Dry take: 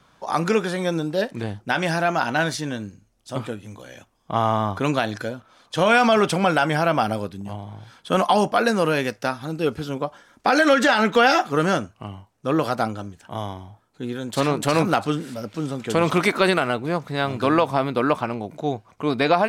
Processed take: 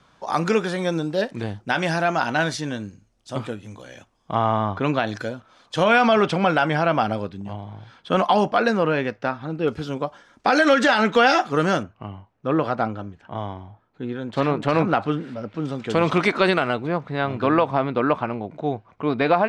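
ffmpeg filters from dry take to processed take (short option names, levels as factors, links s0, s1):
-af "asetnsamples=n=441:p=0,asendcmd='4.35 lowpass f 3400;5.07 lowpass f 7600;5.84 lowpass f 4200;8.77 lowpass f 2600;9.68 lowpass f 6800;11.83 lowpass f 2600;15.65 lowpass f 4900;16.87 lowpass f 2800',lowpass=8000"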